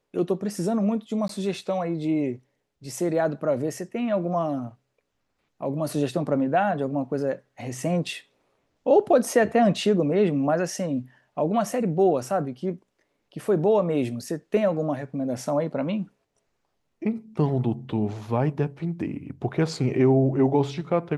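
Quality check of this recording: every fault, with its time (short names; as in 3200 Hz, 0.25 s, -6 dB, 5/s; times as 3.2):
1.28–1.29 gap 13 ms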